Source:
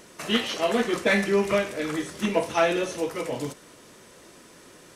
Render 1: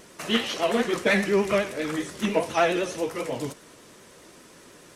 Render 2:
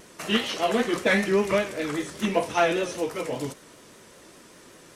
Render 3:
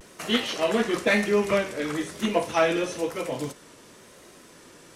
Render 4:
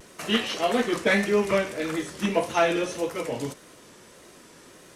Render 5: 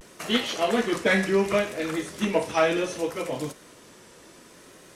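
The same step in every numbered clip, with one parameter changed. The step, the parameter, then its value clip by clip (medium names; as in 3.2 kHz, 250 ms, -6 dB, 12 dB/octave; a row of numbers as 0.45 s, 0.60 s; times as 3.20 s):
vibrato, rate: 10 Hz, 5.1 Hz, 1 Hz, 1.7 Hz, 0.67 Hz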